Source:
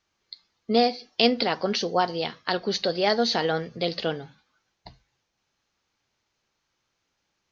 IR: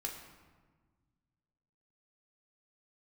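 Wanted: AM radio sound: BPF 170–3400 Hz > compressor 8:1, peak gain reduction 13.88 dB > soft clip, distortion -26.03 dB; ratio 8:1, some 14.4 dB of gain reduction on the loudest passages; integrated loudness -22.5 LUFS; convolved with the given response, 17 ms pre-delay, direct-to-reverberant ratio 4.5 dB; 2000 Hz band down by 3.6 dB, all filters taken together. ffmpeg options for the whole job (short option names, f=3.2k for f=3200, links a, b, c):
-filter_complex "[0:a]equalizer=f=2k:t=o:g=-4,acompressor=threshold=-30dB:ratio=8,asplit=2[a][b];[1:a]atrim=start_sample=2205,adelay=17[c];[b][c]afir=irnorm=-1:irlink=0,volume=-4.5dB[d];[a][d]amix=inputs=2:normalize=0,highpass=170,lowpass=3.4k,acompressor=threshold=-40dB:ratio=8,asoftclip=threshold=-27.5dB,volume=23.5dB"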